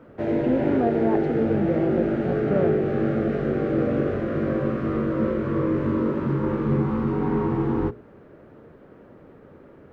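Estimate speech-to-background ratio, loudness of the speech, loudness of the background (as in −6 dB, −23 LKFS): −3.5 dB, −27.5 LKFS, −24.0 LKFS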